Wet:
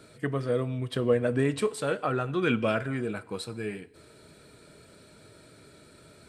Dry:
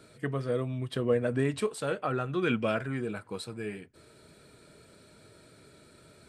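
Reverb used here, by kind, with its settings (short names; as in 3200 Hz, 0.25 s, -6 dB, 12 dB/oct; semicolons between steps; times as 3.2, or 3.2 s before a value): FDN reverb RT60 1.1 s, low-frequency decay 0.7×, high-frequency decay 0.95×, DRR 17 dB; gain +2.5 dB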